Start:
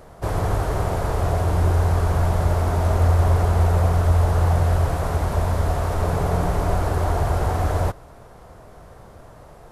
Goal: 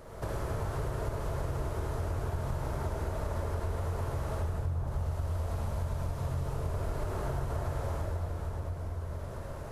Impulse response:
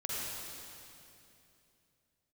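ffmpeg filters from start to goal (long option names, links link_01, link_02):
-filter_complex "[0:a]bandreject=frequency=750:width=12,asettb=1/sr,asplit=3[link_01][link_02][link_03];[link_01]atrim=end=4.424[link_04];[link_02]atrim=start=4.42:end=6.69,asetpts=PTS-STARTPTS,afade=type=in:duration=0.004:curve=qsin,afade=type=out:start_time=2.266:duration=0.004:curve=qsin,acrossover=split=370|1600[link_05][link_06][link_07];[link_06]adelay=330[link_08];[link_07]adelay=450[link_09];[link_05][link_08][link_09]amix=inputs=3:normalize=0,atrim=end_sample=100107[link_10];[link_03]atrim=start=6.686[link_11];[link_04][link_10]acrossfade=duration=0.004:curve1=hsin:curve2=qsin[link_12];[link_12][link_11]acrossfade=duration=0.004:curve1=qsin:curve2=hsin[link_13];[1:a]atrim=start_sample=2205[link_14];[link_13][link_14]afir=irnorm=-1:irlink=0,acompressor=threshold=-32dB:ratio=4,volume=-1.5dB"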